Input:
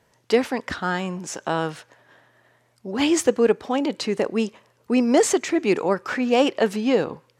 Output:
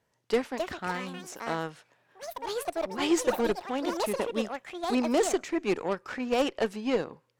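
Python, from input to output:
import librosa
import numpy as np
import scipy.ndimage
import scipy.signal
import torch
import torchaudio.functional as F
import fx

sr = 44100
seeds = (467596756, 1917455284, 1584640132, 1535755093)

y = fx.cheby_harmonics(x, sr, harmonics=(5, 6, 7), levels_db=(-18, -27, -17), full_scale_db=-6.5)
y = fx.echo_pitch(y, sr, ms=363, semitones=6, count=2, db_per_echo=-6.0)
y = fx.comb(y, sr, ms=5.6, depth=0.53, at=(2.9, 3.66))
y = y * 10.0 ** (-8.5 / 20.0)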